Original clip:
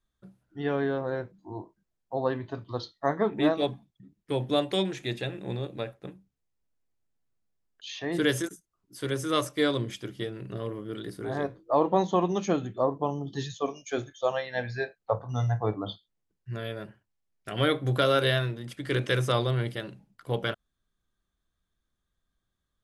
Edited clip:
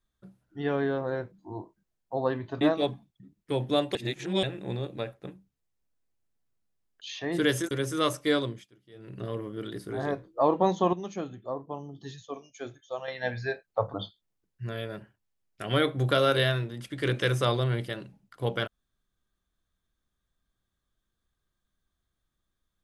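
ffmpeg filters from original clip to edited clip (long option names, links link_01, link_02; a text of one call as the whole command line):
ffmpeg -i in.wav -filter_complex "[0:a]asplit=10[link_01][link_02][link_03][link_04][link_05][link_06][link_07][link_08][link_09][link_10];[link_01]atrim=end=2.612[link_11];[link_02]atrim=start=3.408:end=4.752[link_12];[link_03]atrim=start=4.748:end=5.232,asetpts=PTS-STARTPTS,areverse[link_13];[link_04]atrim=start=5.228:end=8.512[link_14];[link_05]atrim=start=9.028:end=9.99,asetpts=PTS-STARTPTS,afade=type=out:start_time=0.652:duration=0.31:silence=0.0749894[link_15];[link_06]atrim=start=9.99:end=10.23,asetpts=PTS-STARTPTS,volume=-22.5dB[link_16];[link_07]atrim=start=10.23:end=12.252,asetpts=PTS-STARTPTS,afade=type=in:duration=0.31:silence=0.0749894[link_17];[link_08]atrim=start=12.248:end=14.402,asetpts=PTS-STARTPTS,volume=-8.5dB[link_18];[link_09]atrim=start=14.398:end=15.262[link_19];[link_10]atrim=start=15.808[link_20];[link_11][link_12]acrossfade=duration=0.004:curve1=hsin:curve2=hsin[link_21];[link_21][link_13]acrossfade=duration=0.004:curve1=hsin:curve2=hsin[link_22];[link_22][link_14]acrossfade=duration=0.004:curve1=hsin:curve2=hsin[link_23];[link_15][link_16][link_17]concat=n=3:v=0:a=1[link_24];[link_23][link_24]acrossfade=duration=0.004:curve1=hsin:curve2=hsin[link_25];[link_25][link_18]acrossfade=duration=0.004:curve1=hsin:curve2=hsin[link_26];[link_26][link_19]acrossfade=duration=0.004:curve1=hsin:curve2=hsin[link_27];[link_27][link_20]acrossfade=duration=0.004:curve1=hsin:curve2=hsin" out.wav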